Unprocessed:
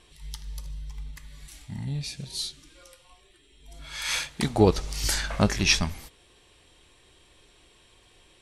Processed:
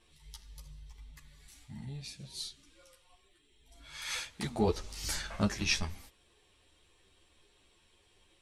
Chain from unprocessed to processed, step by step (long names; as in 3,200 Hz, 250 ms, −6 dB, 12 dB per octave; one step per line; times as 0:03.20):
string-ensemble chorus
level −6 dB